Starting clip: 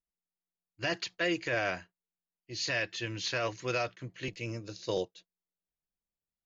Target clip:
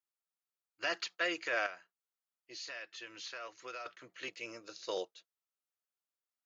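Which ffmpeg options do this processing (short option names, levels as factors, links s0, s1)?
-filter_complex "[0:a]highpass=480,equalizer=f=1300:w=4.3:g=8,asettb=1/sr,asplit=3[s0][s1][s2];[s0]atrim=end=1.664[s3];[s1]atrim=start=1.66:end=3.86,asetpts=PTS-STARTPTS,afade=t=in:d=0.004:c=qsin,afade=t=out:st=2.196:d=0.004:c=qsin,acompressor=threshold=0.00562:ratio=2.5[s4];[s2]atrim=start=3.856[s5];[s3][s4]acrossfade=d=0.004:c1=hsin:c2=qsin[s6];[s6][s5]acrossfade=d=0.004:c1=qsin:c2=hsin,volume=0.75"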